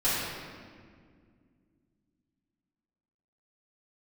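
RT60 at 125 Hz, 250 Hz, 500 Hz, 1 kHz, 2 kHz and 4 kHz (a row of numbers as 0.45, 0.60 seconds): 3.1, 3.3, 2.3, 1.7, 1.7, 1.3 seconds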